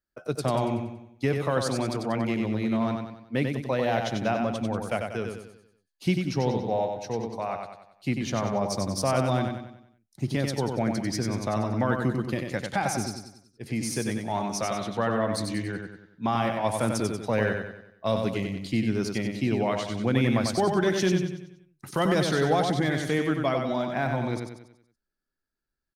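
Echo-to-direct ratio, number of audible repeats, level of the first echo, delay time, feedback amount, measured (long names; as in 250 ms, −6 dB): −4.0 dB, 5, −5.0 dB, 94 ms, 45%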